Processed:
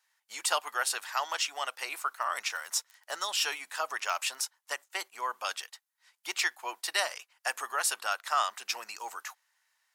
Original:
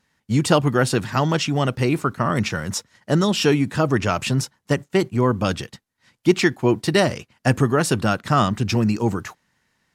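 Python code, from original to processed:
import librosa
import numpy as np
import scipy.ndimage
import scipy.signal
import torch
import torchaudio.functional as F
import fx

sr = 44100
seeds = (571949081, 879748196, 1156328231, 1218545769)

y = fx.dmg_crackle(x, sr, seeds[0], per_s=16.0, level_db=-33.0, at=(2.06, 4.39), fade=0.02)
y = scipy.signal.sosfilt(scipy.signal.butter(4, 780.0, 'highpass', fs=sr, output='sos'), y)
y = fx.high_shelf(y, sr, hz=8400.0, db=11.0)
y = F.gain(torch.from_numpy(y), -7.0).numpy()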